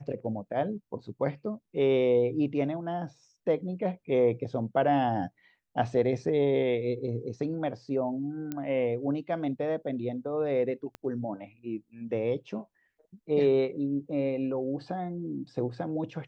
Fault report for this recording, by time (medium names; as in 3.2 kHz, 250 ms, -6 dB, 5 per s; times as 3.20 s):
8.52 s: pop -20 dBFS
10.95 s: pop -26 dBFS